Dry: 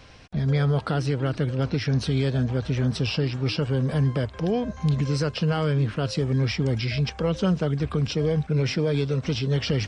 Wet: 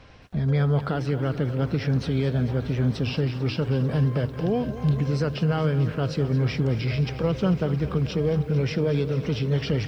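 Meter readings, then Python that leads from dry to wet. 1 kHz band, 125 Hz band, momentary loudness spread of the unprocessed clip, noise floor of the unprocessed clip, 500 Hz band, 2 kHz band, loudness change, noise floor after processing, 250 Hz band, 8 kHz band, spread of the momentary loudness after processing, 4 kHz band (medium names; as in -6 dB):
-0.5 dB, 0.0 dB, 3 LU, -42 dBFS, +0.5 dB, -2.0 dB, 0.0 dB, -35 dBFS, +0.5 dB, no reading, 3 LU, -4.5 dB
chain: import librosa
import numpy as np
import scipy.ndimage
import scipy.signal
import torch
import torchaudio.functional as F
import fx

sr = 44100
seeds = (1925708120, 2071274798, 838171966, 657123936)

y = fx.lowpass(x, sr, hz=2500.0, slope=6)
y = fx.echo_crushed(y, sr, ms=222, feedback_pct=80, bits=9, wet_db=-14.0)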